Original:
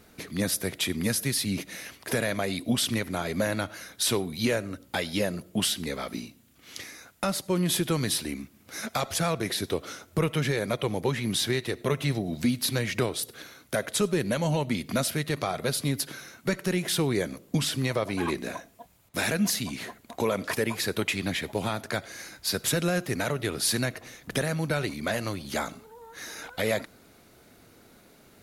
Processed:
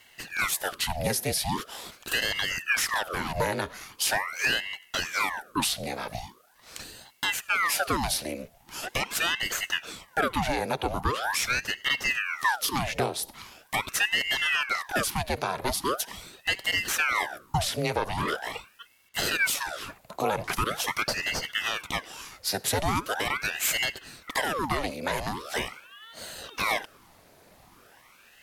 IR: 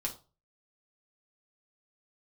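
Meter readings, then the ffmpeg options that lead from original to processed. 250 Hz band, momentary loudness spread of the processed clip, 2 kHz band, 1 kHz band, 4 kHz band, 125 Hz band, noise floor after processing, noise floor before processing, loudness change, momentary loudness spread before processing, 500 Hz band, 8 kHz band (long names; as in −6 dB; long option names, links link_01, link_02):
−8.0 dB, 12 LU, +6.0 dB, +6.0 dB, +2.0 dB, −7.0 dB, −58 dBFS, −57 dBFS, +0.5 dB, 11 LU, −4.0 dB, 0.0 dB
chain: -af "afreqshift=150,aeval=exprs='val(0)*sin(2*PI*1300*n/s+1300*0.9/0.42*sin(2*PI*0.42*n/s))':channel_layout=same,volume=2.5dB"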